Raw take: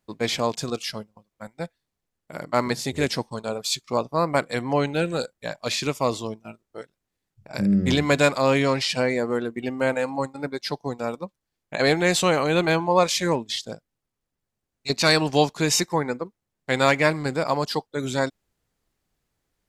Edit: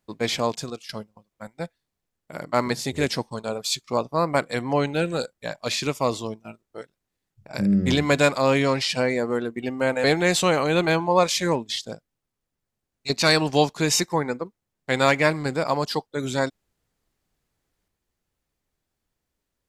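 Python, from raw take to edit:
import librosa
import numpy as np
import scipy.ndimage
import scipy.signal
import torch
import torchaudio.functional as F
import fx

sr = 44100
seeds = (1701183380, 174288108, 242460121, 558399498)

y = fx.edit(x, sr, fx.fade_out_to(start_s=0.51, length_s=0.38, floor_db=-16.5),
    fx.cut(start_s=10.04, length_s=1.8), tone=tone)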